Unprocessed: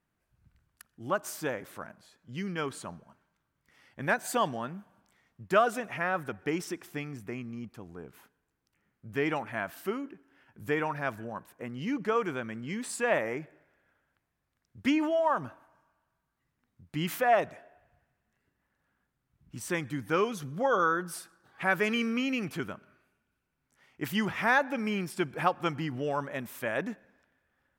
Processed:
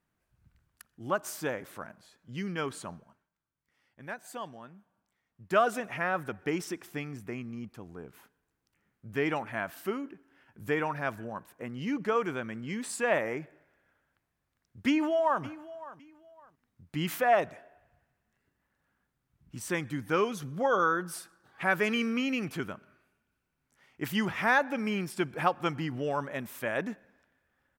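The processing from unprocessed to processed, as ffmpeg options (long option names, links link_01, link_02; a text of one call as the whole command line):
ffmpeg -i in.wav -filter_complex "[0:a]asplit=2[link_01][link_02];[link_02]afade=type=in:start_time=14.87:duration=0.01,afade=type=out:start_time=15.43:duration=0.01,aecho=0:1:560|1120:0.133352|0.033338[link_03];[link_01][link_03]amix=inputs=2:normalize=0,asplit=3[link_04][link_05][link_06];[link_04]atrim=end=3.29,asetpts=PTS-STARTPTS,afade=type=out:start_time=2.94:duration=0.35:silence=0.251189[link_07];[link_05]atrim=start=3.29:end=5.28,asetpts=PTS-STARTPTS,volume=-12dB[link_08];[link_06]atrim=start=5.28,asetpts=PTS-STARTPTS,afade=type=in:duration=0.35:silence=0.251189[link_09];[link_07][link_08][link_09]concat=n=3:v=0:a=1" out.wav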